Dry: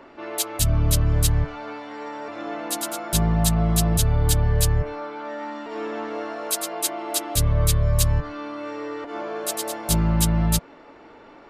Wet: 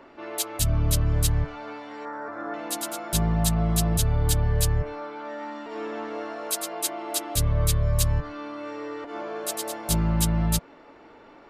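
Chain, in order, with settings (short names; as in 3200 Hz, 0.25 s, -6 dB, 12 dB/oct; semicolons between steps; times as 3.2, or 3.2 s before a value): 2.05–2.54 resonant high shelf 2100 Hz -10 dB, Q 3; gain -3 dB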